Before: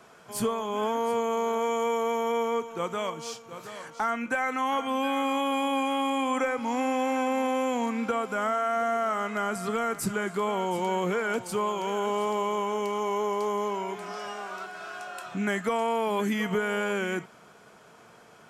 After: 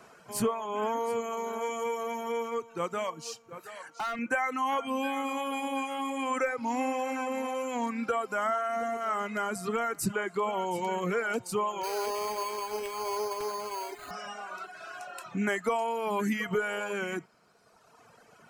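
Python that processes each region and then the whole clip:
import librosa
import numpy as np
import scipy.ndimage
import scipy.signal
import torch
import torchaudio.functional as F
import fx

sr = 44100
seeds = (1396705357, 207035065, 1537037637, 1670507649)

y = fx.chain(x, sr, fx.low_shelf(hz=240.0, db=-8.0),
    fx.clip_hard(threshold_db=-29.5), at=(3.6, 4.19))
y = fx.chain(y, sr, fx.brickwall_highpass(low_hz=220.0),
    fx.high_shelf(hz=8200.0, db=8.5),
    fx.resample_bad(factor=8, down='none', up='hold'), at=(11.83, 14.11))
y = fx.notch(y, sr, hz=3400.0, q=8.6)
y = fx.dereverb_blind(y, sr, rt60_s=1.8)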